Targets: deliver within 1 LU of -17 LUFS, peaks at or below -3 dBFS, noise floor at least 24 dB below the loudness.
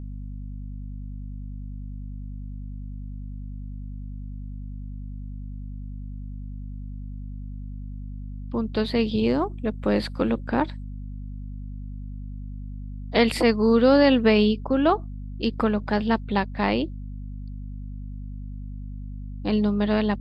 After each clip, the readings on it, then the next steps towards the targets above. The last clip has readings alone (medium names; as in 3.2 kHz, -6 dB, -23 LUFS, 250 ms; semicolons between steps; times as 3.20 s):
hum 50 Hz; highest harmonic 250 Hz; hum level -32 dBFS; loudness -23.0 LUFS; peak level -7.0 dBFS; loudness target -17.0 LUFS
-> hum notches 50/100/150/200/250 Hz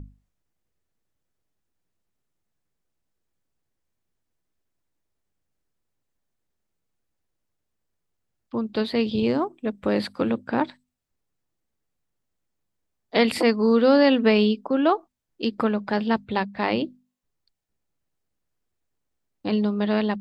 hum not found; loudness -23.0 LUFS; peak level -6.5 dBFS; loudness target -17.0 LUFS
-> trim +6 dB; peak limiter -3 dBFS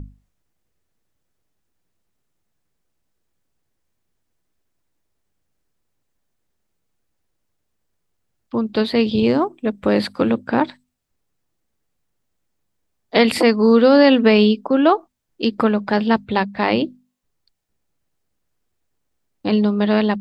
loudness -17.5 LUFS; peak level -3.0 dBFS; noise floor -73 dBFS